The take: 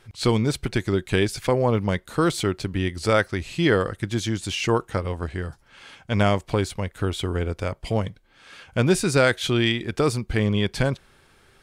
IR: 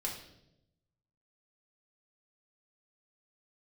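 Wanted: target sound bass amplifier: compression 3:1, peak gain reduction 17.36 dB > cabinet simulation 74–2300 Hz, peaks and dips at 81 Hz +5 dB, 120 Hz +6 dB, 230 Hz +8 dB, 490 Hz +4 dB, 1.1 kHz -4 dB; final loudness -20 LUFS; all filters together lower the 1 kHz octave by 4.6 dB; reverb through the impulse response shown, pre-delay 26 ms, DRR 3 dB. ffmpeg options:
-filter_complex "[0:a]equalizer=f=1000:t=o:g=-5,asplit=2[s0][s1];[1:a]atrim=start_sample=2205,adelay=26[s2];[s1][s2]afir=irnorm=-1:irlink=0,volume=0.562[s3];[s0][s3]amix=inputs=2:normalize=0,acompressor=threshold=0.0158:ratio=3,highpass=f=74:w=0.5412,highpass=f=74:w=1.3066,equalizer=f=81:t=q:w=4:g=5,equalizer=f=120:t=q:w=4:g=6,equalizer=f=230:t=q:w=4:g=8,equalizer=f=490:t=q:w=4:g=4,equalizer=f=1100:t=q:w=4:g=-4,lowpass=f=2300:w=0.5412,lowpass=f=2300:w=1.3066,volume=4.47"

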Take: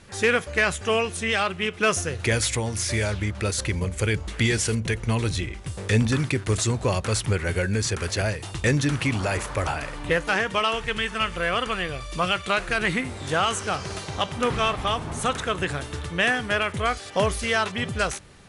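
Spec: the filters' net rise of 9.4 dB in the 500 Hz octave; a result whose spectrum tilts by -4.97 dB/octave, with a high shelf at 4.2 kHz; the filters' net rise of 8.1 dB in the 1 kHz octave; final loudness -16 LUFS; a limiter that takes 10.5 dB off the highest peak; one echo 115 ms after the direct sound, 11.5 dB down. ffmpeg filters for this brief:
-af "equalizer=f=500:t=o:g=9,equalizer=f=1000:t=o:g=8.5,highshelf=f=4200:g=-5,alimiter=limit=0.237:level=0:latency=1,aecho=1:1:115:0.266,volume=2.24"

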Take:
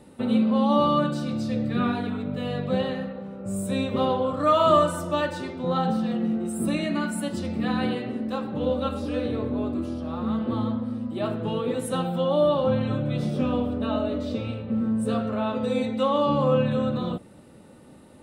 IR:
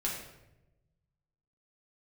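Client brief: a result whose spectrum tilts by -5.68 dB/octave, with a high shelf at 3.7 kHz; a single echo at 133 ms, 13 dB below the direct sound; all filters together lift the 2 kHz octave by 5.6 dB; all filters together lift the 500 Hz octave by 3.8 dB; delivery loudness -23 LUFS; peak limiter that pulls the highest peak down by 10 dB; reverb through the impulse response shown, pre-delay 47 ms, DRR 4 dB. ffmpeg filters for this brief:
-filter_complex "[0:a]equalizer=f=500:t=o:g=4,equalizer=f=2000:t=o:g=8.5,highshelf=f=3700:g=-4.5,alimiter=limit=0.188:level=0:latency=1,aecho=1:1:133:0.224,asplit=2[s0][s1];[1:a]atrim=start_sample=2205,adelay=47[s2];[s1][s2]afir=irnorm=-1:irlink=0,volume=0.376[s3];[s0][s3]amix=inputs=2:normalize=0,volume=1.12"

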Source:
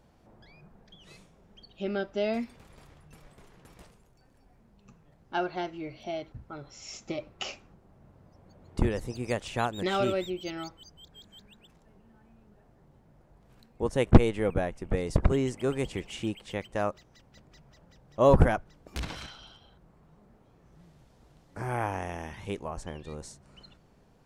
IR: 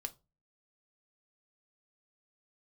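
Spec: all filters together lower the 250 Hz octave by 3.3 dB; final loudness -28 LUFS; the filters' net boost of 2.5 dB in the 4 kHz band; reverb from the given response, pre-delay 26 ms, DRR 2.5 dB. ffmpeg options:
-filter_complex "[0:a]equalizer=f=250:t=o:g=-4.5,equalizer=f=4000:t=o:g=3.5,asplit=2[s0][s1];[1:a]atrim=start_sample=2205,adelay=26[s2];[s1][s2]afir=irnorm=-1:irlink=0,volume=0.944[s3];[s0][s3]amix=inputs=2:normalize=0,volume=1.26"

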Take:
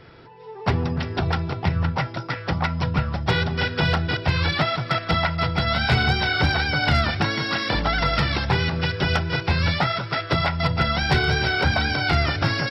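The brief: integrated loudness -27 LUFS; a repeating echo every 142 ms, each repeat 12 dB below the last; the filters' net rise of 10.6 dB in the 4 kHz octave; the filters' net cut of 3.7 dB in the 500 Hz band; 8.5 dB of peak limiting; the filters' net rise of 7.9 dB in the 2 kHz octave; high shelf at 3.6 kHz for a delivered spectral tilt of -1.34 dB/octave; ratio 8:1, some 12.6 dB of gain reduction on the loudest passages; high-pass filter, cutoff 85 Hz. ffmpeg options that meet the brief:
-af "highpass=85,equalizer=f=500:t=o:g=-6,equalizer=f=2000:t=o:g=7.5,highshelf=f=3600:g=6,equalizer=f=4000:t=o:g=7,acompressor=threshold=0.0562:ratio=8,alimiter=limit=0.1:level=0:latency=1,aecho=1:1:142|284|426:0.251|0.0628|0.0157,volume=1.26"

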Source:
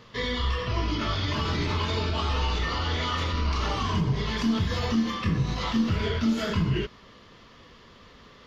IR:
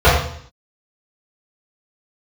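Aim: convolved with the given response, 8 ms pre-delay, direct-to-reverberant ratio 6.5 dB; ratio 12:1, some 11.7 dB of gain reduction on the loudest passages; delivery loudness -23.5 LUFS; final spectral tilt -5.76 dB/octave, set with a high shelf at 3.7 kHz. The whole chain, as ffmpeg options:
-filter_complex "[0:a]highshelf=f=3700:g=-5,acompressor=threshold=0.0251:ratio=12,asplit=2[s0][s1];[1:a]atrim=start_sample=2205,adelay=8[s2];[s1][s2]afir=irnorm=-1:irlink=0,volume=0.0168[s3];[s0][s3]amix=inputs=2:normalize=0,volume=2.37"

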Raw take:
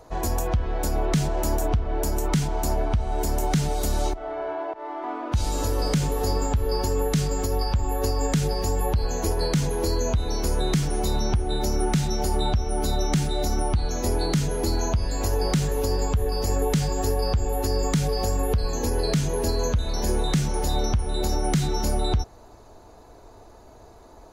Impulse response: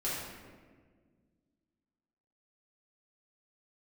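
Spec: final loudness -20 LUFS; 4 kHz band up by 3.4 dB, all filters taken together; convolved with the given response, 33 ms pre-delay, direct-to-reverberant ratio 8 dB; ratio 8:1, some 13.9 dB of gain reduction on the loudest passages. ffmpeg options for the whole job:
-filter_complex "[0:a]equalizer=f=4000:t=o:g=4,acompressor=threshold=0.0251:ratio=8,asplit=2[s0][s1];[1:a]atrim=start_sample=2205,adelay=33[s2];[s1][s2]afir=irnorm=-1:irlink=0,volume=0.211[s3];[s0][s3]amix=inputs=2:normalize=0,volume=6.31"

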